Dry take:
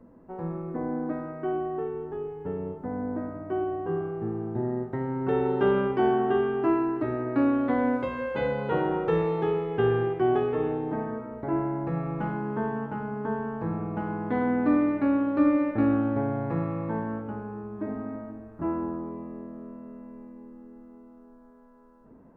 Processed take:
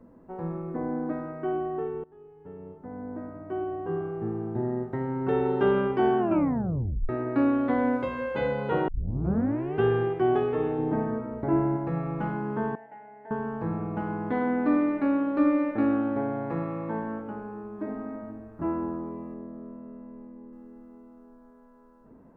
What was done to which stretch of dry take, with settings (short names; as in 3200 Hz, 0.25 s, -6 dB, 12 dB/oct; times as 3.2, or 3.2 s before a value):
2.04–4.26 fade in linear, from -21.5 dB
6.19 tape stop 0.90 s
8.88 tape start 0.94 s
10.78–11.77 low shelf 440 Hz +5.5 dB
12.75–13.31 double band-pass 1200 Hz, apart 1.4 oct
14.32–18.23 bell 94 Hz -12 dB 1 oct
19.34–20.53 LPF 1400 Hz 6 dB/oct